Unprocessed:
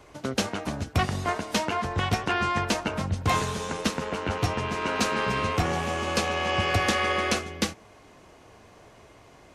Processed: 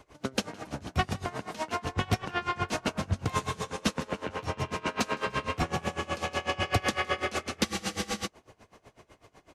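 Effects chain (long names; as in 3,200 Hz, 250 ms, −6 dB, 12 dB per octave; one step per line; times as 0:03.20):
echo with shifted repeats 163 ms, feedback 45%, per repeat +35 Hz, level −9.5 dB
frozen spectrum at 0:07.67, 0.59 s
tremolo with a sine in dB 8 Hz, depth 22 dB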